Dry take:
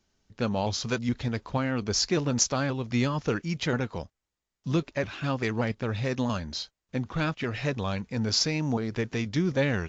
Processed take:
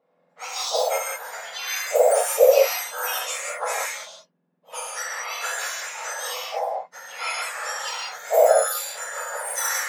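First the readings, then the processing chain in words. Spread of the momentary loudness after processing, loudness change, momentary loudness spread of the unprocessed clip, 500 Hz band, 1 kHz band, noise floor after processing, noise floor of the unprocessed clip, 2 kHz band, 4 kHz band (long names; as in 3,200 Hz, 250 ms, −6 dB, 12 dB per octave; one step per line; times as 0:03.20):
15 LU, +5.0 dB, 8 LU, +10.0 dB, +9.0 dB, −67 dBFS, below −85 dBFS, +5.5 dB, +1.5 dB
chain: frequency axis turned over on the octave scale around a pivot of 1,800 Hz
reverb whose tail is shaped and stops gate 230 ms flat, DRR −6 dB
low-pass that shuts in the quiet parts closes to 2,900 Hz, open at −20.5 dBFS
level +2 dB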